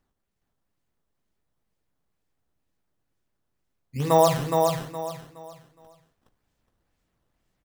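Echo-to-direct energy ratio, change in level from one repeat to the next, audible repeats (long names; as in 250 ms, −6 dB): −3.5 dB, −10.5 dB, 3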